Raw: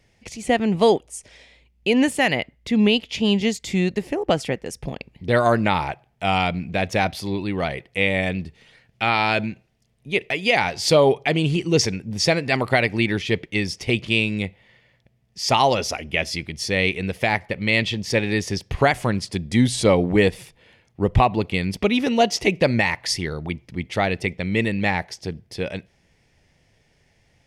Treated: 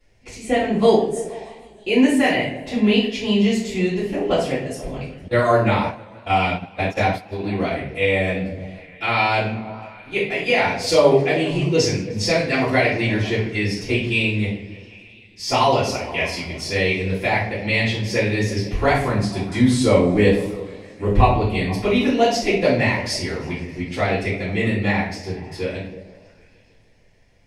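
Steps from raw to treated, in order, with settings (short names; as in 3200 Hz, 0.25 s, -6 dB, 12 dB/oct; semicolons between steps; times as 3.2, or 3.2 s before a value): delay with a stepping band-pass 0.16 s, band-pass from 290 Hz, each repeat 0.7 oct, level -11.5 dB; shoebox room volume 76 m³, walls mixed, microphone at 3.1 m; 5.28–7.44 gate -10 dBFS, range -32 dB; warbling echo 0.155 s, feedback 75%, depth 172 cents, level -24 dB; gain -12 dB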